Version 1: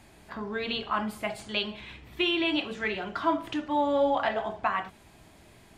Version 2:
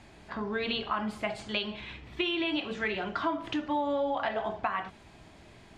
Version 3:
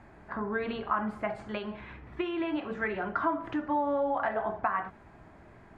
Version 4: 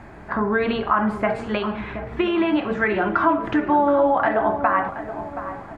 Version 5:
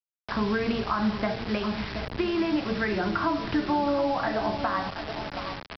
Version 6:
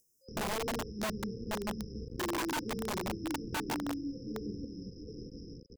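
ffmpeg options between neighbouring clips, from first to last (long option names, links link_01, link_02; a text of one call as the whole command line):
ffmpeg -i in.wav -af "lowpass=6300,acompressor=threshold=-28dB:ratio=6,volume=1.5dB" out.wav
ffmpeg -i in.wav -af "highshelf=frequency=2300:width_type=q:width=1.5:gain=-13" out.wav
ffmpeg -i in.wav -filter_complex "[0:a]asplit=2[link_01][link_02];[link_02]alimiter=limit=-23.5dB:level=0:latency=1,volume=-0.5dB[link_03];[link_01][link_03]amix=inputs=2:normalize=0,asplit=2[link_04][link_05];[link_05]adelay=725,lowpass=frequency=1400:poles=1,volume=-10.5dB,asplit=2[link_06][link_07];[link_07]adelay=725,lowpass=frequency=1400:poles=1,volume=0.46,asplit=2[link_08][link_09];[link_09]adelay=725,lowpass=frequency=1400:poles=1,volume=0.46,asplit=2[link_10][link_11];[link_11]adelay=725,lowpass=frequency=1400:poles=1,volume=0.46,asplit=2[link_12][link_13];[link_13]adelay=725,lowpass=frequency=1400:poles=1,volume=0.46[link_14];[link_04][link_06][link_08][link_10][link_12][link_14]amix=inputs=6:normalize=0,volume=6dB" out.wav
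ffmpeg -i in.wav -filter_complex "[0:a]aresample=11025,acrusher=bits=4:mix=0:aa=0.000001,aresample=44100,acrossover=split=220[link_01][link_02];[link_02]acompressor=threshold=-40dB:ratio=1.5[link_03];[link_01][link_03]amix=inputs=2:normalize=0" out.wav
ffmpeg -i in.wav -af "afftfilt=real='re*(1-between(b*sr/4096,530,5000))':imag='im*(1-between(b*sr/4096,530,5000))':win_size=4096:overlap=0.75,aeval=exprs='(mod(14.1*val(0)+1,2)-1)/14.1':channel_layout=same,acompressor=mode=upward:threshold=-42dB:ratio=2.5,volume=-6.5dB" out.wav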